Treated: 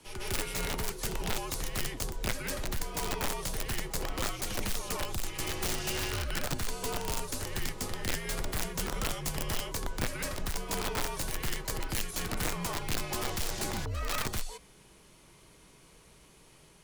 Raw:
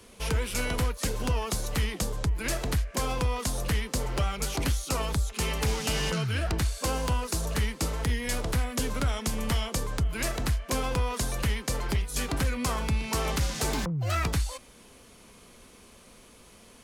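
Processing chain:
backwards echo 154 ms −6 dB
wrap-around overflow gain 19.5 dB
frequency shifter −71 Hz
level −5.5 dB

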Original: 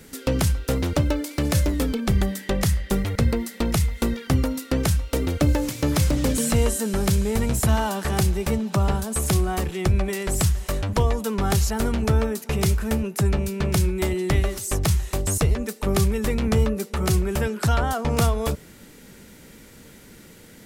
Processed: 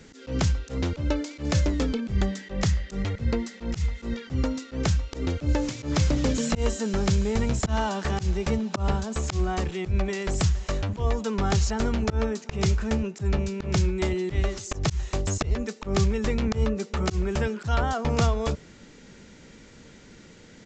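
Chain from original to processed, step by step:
volume swells 111 ms
downsampling to 16,000 Hz
level −2 dB

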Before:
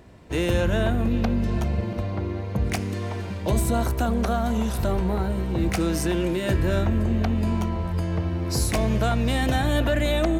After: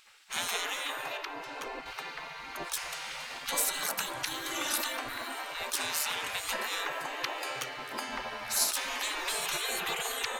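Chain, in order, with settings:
gate on every frequency bin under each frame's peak −25 dB weak
0:01.17–0:01.86: high-shelf EQ 2,100 Hz −9.5 dB
0:04.51–0:04.97: comb filter 3.4 ms, depth 71%
level +6 dB

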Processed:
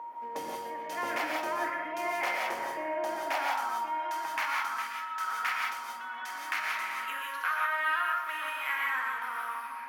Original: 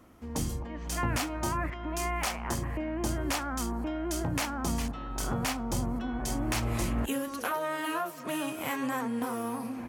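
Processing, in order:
octave-band graphic EQ 250/2,000/8,000 Hz +3/+9/−10 dB
steady tone 940 Hz −34 dBFS
high-pass filter sweep 510 Hz → 1,300 Hz, 0:02.51–0:04.78
on a send: feedback echo with a high-pass in the loop 122 ms, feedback 31%, level −14 dB
on the sum: reverb whose tail is shaped and stops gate 200 ms rising, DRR −0.5 dB
level −7 dB

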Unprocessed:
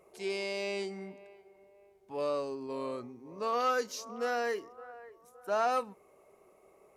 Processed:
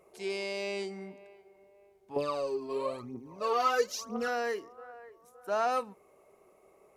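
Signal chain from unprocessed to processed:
0:02.16–0:04.28: phase shifter 1 Hz, delay 3.1 ms, feedback 70%

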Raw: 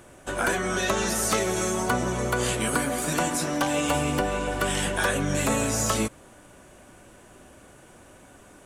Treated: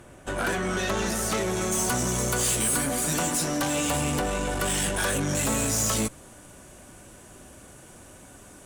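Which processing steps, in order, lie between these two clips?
bass and treble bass +4 dB, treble −2 dB, from 0:01.71 treble +14 dB, from 0:02.76 treble +7 dB
tube saturation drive 23 dB, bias 0.4
level +1.5 dB

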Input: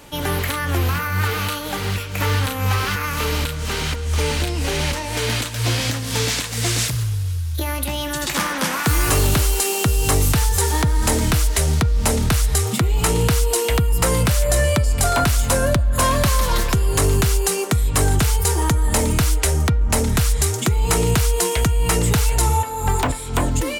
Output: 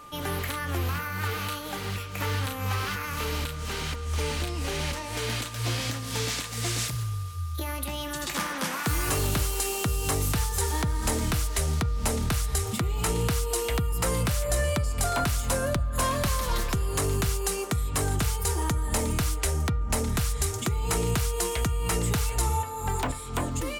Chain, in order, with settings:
steady tone 1,200 Hz −36 dBFS
hum removal 46.17 Hz, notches 3
level −8.5 dB

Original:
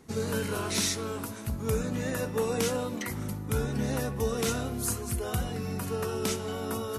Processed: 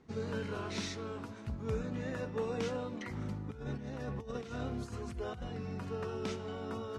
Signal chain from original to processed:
0:03.13–0:05.42: compressor whose output falls as the input rises −32 dBFS, ratio −0.5
high-frequency loss of the air 150 metres
level −6.5 dB

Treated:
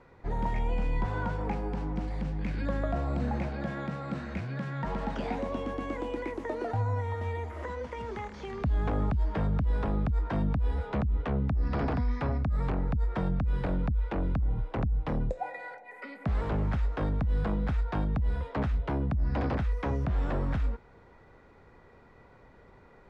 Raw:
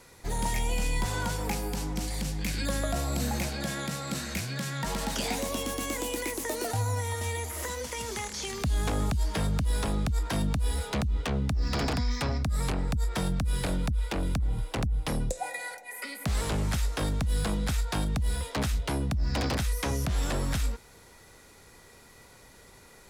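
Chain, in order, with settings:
low-pass filter 1,500 Hz 12 dB per octave

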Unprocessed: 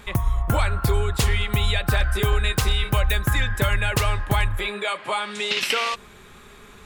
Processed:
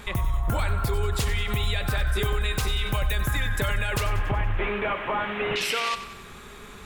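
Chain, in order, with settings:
0:04.06–0:05.56: linear delta modulator 16 kbit/s, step −30.5 dBFS
brickwall limiter −20.5 dBFS, peak gain reduction 9 dB
feedback echo at a low word length 94 ms, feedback 55%, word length 10 bits, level −12.5 dB
level +2.5 dB

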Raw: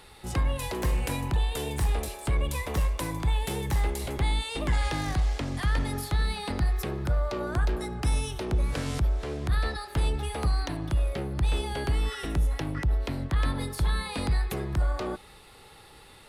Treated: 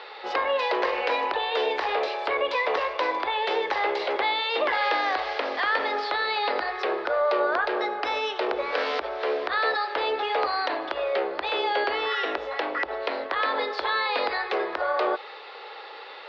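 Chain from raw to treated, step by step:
elliptic band-pass filter 470–4,800 Hz, stop band 50 dB
in parallel at +2.5 dB: brickwall limiter −31.5 dBFS, peak gain reduction 11 dB
on the sum: high-frequency loss of the air 200 metres
level +7.5 dB

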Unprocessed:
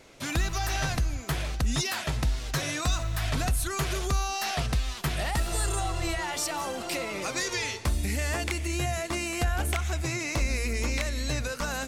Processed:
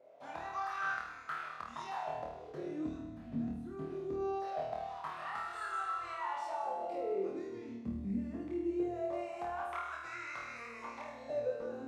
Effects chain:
LFO wah 0.22 Hz 230–1,400 Hz, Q 7.6
on a send: flutter between parallel walls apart 4.4 metres, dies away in 0.66 s
on the sum: reverb whose tail is shaped and stops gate 260 ms flat, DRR 9.5 dB
level +2 dB

